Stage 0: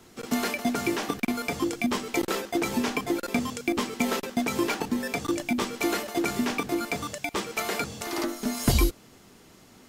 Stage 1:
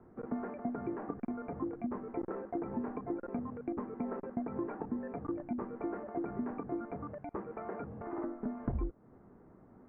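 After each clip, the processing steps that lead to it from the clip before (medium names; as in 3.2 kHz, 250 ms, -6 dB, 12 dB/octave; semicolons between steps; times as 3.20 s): compression 2.5:1, threshold -32 dBFS, peak gain reduction 10.5 dB; Bessel low-pass 910 Hz, order 8; trim -3 dB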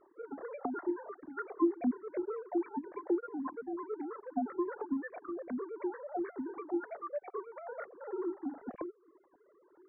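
formants replaced by sine waves; Shepard-style flanger falling 1.2 Hz; trim +7 dB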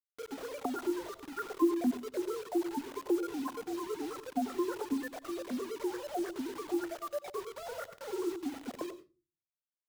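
bit crusher 8-bit; on a send at -13 dB: reverberation RT60 0.30 s, pre-delay 88 ms; on the sum: trim +1 dB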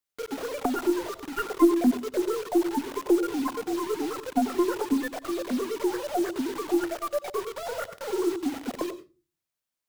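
tracing distortion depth 0.085 ms; trim +8.5 dB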